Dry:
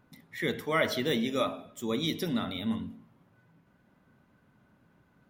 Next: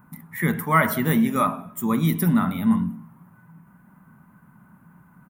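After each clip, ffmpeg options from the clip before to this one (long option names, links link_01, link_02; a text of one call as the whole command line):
ffmpeg -i in.wav -af "firequalizer=gain_entry='entry(110,0);entry(170,11);entry(290,-2);entry(500,-8);entry(970,8);entry(3500,-14);entry(5300,-11);entry(9200,7);entry(14000,12)':delay=0.05:min_phase=1,volume=7dB" out.wav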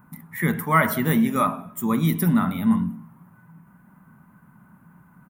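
ffmpeg -i in.wav -af anull out.wav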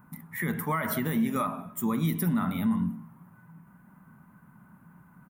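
ffmpeg -i in.wav -af "alimiter=limit=-16.5dB:level=0:latency=1:release=128,volume=-2.5dB" out.wav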